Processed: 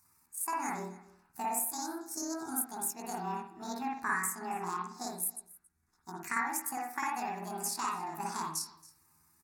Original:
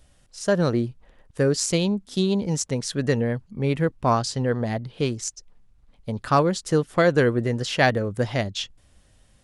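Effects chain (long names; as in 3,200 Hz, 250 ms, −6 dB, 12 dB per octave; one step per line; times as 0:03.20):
pitch shift by two crossfaded delay taps +8.5 semitones
high-pass filter 680 Hz 6 dB per octave
parametric band 10,000 Hz +10 dB 1.4 octaves
downward compressor, threshold −24 dBFS, peak gain reduction 10.5 dB
phaser with its sweep stopped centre 1,300 Hz, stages 4
single-tap delay 276 ms −21 dB
convolution reverb, pre-delay 50 ms, DRR −2 dB
level −6 dB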